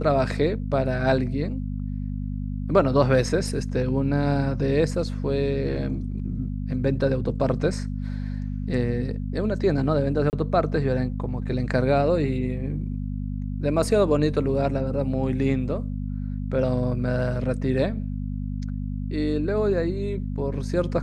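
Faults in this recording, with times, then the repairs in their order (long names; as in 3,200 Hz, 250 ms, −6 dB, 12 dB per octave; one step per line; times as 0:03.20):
mains hum 50 Hz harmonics 5 −29 dBFS
0:10.30–0:10.33: drop-out 29 ms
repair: hum removal 50 Hz, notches 5
repair the gap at 0:10.30, 29 ms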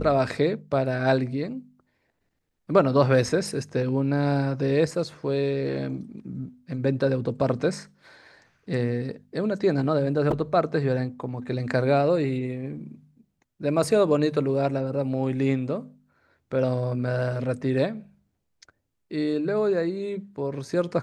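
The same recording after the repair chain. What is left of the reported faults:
none of them is left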